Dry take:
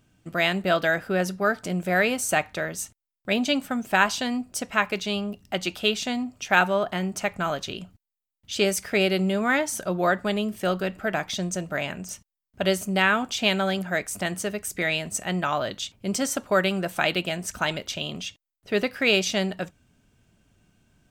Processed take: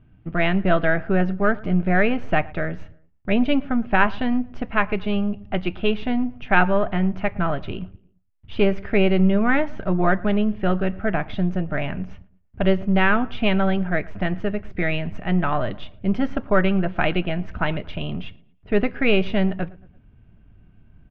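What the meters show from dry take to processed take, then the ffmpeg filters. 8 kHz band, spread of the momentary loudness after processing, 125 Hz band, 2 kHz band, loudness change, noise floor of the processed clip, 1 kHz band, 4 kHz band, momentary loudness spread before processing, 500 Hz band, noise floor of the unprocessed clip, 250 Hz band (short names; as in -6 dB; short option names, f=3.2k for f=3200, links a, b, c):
under -35 dB, 10 LU, +8.0 dB, +0.5 dB, +2.5 dB, -55 dBFS, +2.0 dB, -6.0 dB, 9 LU, +2.5 dB, under -85 dBFS, +6.5 dB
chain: -filter_complex "[0:a]aeval=exprs='if(lt(val(0),0),0.708*val(0),val(0))':c=same,lowpass=f=2.9k:w=0.5412,lowpass=f=2.9k:w=1.3066,aemphasis=mode=reproduction:type=bsi,bandreject=f=530:w=12,asplit=2[a][b];[b]adelay=113,lowpass=f=2.2k:p=1,volume=-22dB,asplit=2[c][d];[d]adelay=113,lowpass=f=2.2k:p=1,volume=0.48,asplit=2[e][f];[f]adelay=113,lowpass=f=2.2k:p=1,volume=0.48[g];[a][c][e][g]amix=inputs=4:normalize=0,volume=3dB"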